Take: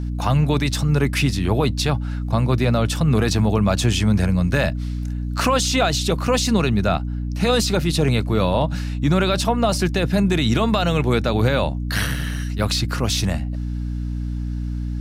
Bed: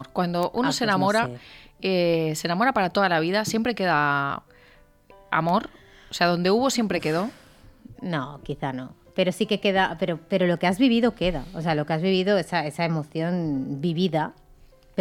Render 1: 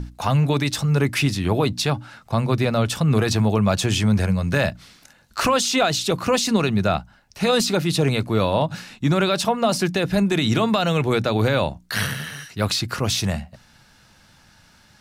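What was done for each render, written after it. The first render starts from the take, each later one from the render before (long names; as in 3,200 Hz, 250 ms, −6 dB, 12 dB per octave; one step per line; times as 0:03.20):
mains-hum notches 60/120/180/240/300 Hz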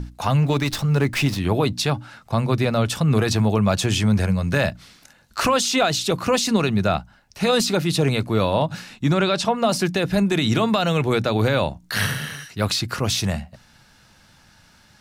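0:00.42–0:01.39: windowed peak hold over 3 samples
0:09.13–0:09.56: low-pass filter 7,800 Hz
0:11.79–0:12.36: double-tracking delay 40 ms −4.5 dB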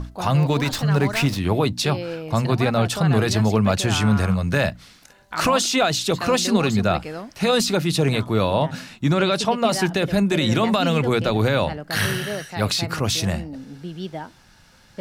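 mix in bed −8.5 dB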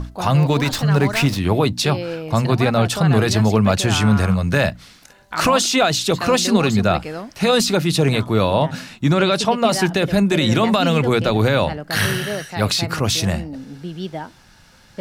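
level +3 dB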